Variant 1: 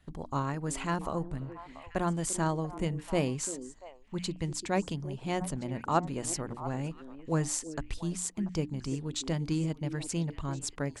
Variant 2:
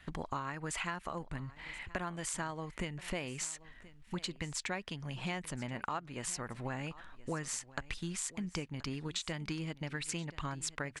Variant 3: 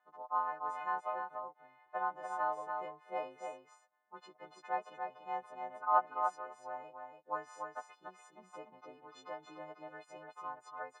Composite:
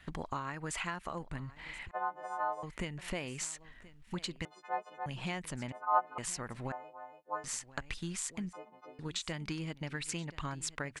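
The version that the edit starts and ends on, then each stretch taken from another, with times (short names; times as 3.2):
2
1.91–2.63 from 3
4.45–5.06 from 3
5.72–6.18 from 3
6.72–7.44 from 3
8.53–8.99 from 3
not used: 1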